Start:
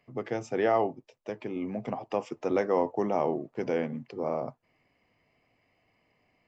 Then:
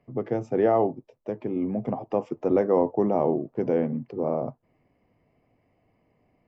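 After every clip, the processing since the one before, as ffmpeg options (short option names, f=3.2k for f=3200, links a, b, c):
-af "tiltshelf=f=1.3k:g=9.5,volume=-2dB"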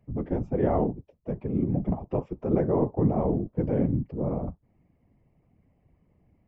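-af "afftfilt=real='hypot(re,im)*cos(2*PI*random(0))':imag='hypot(re,im)*sin(2*PI*random(1))':win_size=512:overlap=0.75,bass=f=250:g=14,treble=f=4k:g=-9"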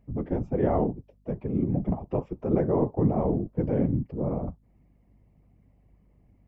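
-af "aeval=exprs='val(0)+0.000891*(sin(2*PI*50*n/s)+sin(2*PI*2*50*n/s)/2+sin(2*PI*3*50*n/s)/3+sin(2*PI*4*50*n/s)/4+sin(2*PI*5*50*n/s)/5)':c=same"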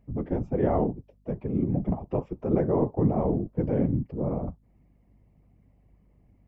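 -af anull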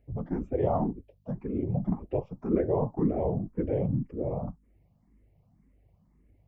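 -filter_complex "[0:a]asplit=2[a][b];[b]afreqshift=1.9[c];[a][c]amix=inputs=2:normalize=1"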